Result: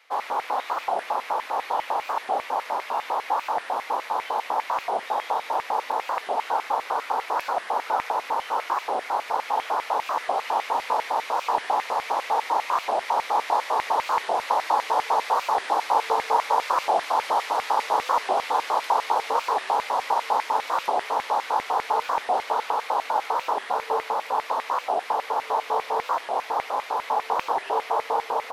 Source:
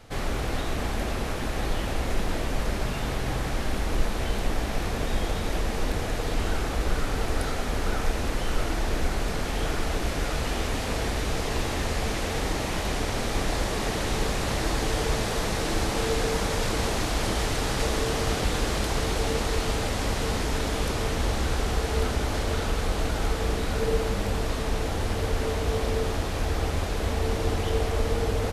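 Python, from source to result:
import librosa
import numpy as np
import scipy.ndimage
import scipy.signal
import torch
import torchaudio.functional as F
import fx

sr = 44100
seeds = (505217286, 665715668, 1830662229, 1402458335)

y = fx.graphic_eq(x, sr, hz=(125, 250, 500, 1000, 2000, 8000), db=(-11, 11, 10, 9, -7, -7))
y = fx.filter_lfo_highpass(y, sr, shape='square', hz=5.0, low_hz=890.0, high_hz=2100.0, q=4.7)
y = fx.record_warp(y, sr, rpm=45.0, depth_cents=250.0)
y = F.gain(torch.from_numpy(y), -4.0).numpy()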